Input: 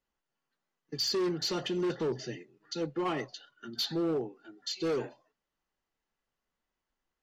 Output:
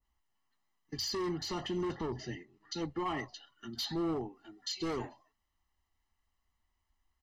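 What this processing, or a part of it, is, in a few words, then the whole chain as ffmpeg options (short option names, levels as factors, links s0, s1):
car stereo with a boomy subwoofer: -filter_complex "[0:a]lowshelf=f=110:t=q:w=3:g=7,aecho=1:1:1:0.66,alimiter=level_in=1.41:limit=0.0631:level=0:latency=1:release=37,volume=0.708,asettb=1/sr,asplit=3[s0][s1][s2];[s0]atrim=end=1.984[s3];[s1]atrim=start=1.98:end=2.91,asetpts=PTS-STARTPTS,afade=t=in:d=0.004:c=qsin,afade=t=out:st=0.926:d=0.004:c=qsin,lowpass=7400[s4];[s2]atrim=start=2.906[s5];[s3][s4]acrossfade=d=0.004:c1=hsin:c2=qsin[s6];[s6][s5]acrossfade=d=0.004:c1=qsin:c2=hsin,adynamicequalizer=threshold=0.00251:dfrequency=2000:dqfactor=0.7:tfrequency=2000:tqfactor=0.7:attack=5:release=100:ratio=0.375:range=3:mode=cutabove:tftype=highshelf"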